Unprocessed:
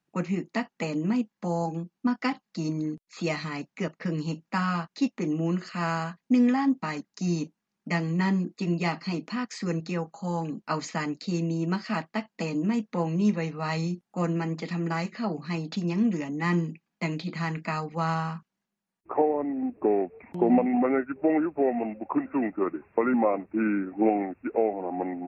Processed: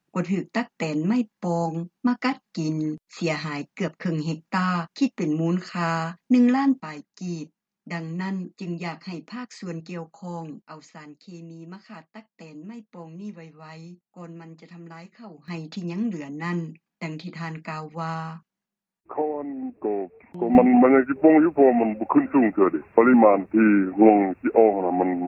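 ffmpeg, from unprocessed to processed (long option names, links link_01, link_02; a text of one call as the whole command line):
ffmpeg -i in.wav -af "asetnsamples=nb_out_samples=441:pad=0,asendcmd='6.8 volume volume -4dB;10.62 volume volume -13dB;15.48 volume volume -2.5dB;20.55 volume volume 8.5dB',volume=3.5dB" out.wav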